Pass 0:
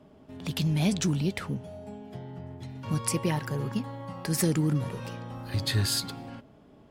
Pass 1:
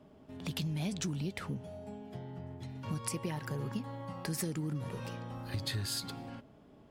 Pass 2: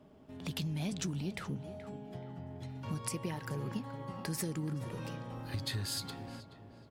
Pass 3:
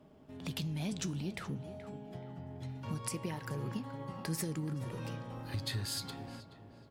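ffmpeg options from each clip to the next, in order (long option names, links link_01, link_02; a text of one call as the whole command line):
ffmpeg -i in.wav -af "acompressor=threshold=-29dB:ratio=6,volume=-3.5dB" out.wav
ffmpeg -i in.wav -filter_complex "[0:a]asplit=2[link_01][link_02];[link_02]adelay=427,lowpass=frequency=2300:poles=1,volume=-12dB,asplit=2[link_03][link_04];[link_04]adelay=427,lowpass=frequency=2300:poles=1,volume=0.46,asplit=2[link_05][link_06];[link_06]adelay=427,lowpass=frequency=2300:poles=1,volume=0.46,asplit=2[link_07][link_08];[link_08]adelay=427,lowpass=frequency=2300:poles=1,volume=0.46,asplit=2[link_09][link_10];[link_10]adelay=427,lowpass=frequency=2300:poles=1,volume=0.46[link_11];[link_01][link_03][link_05][link_07][link_09][link_11]amix=inputs=6:normalize=0,volume=-1dB" out.wav
ffmpeg -i in.wav -af "flanger=delay=6:depth=3.8:regen=89:speed=0.46:shape=triangular,volume=4dB" out.wav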